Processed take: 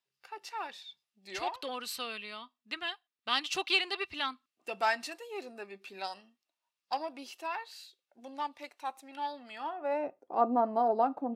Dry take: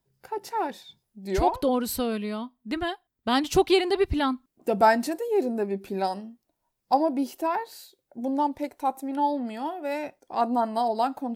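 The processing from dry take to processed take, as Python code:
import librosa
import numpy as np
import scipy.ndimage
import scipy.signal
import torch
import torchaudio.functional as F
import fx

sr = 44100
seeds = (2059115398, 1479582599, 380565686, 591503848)

y = fx.cheby_harmonics(x, sr, harmonics=(8,), levels_db=(-34,), full_scale_db=-8.0)
y = fx.filter_sweep_bandpass(y, sr, from_hz=3200.0, to_hz=470.0, start_s=9.48, end_s=10.07, q=1.0)
y = fx.small_body(y, sr, hz=(1200.0, 2700.0), ring_ms=45, db=10)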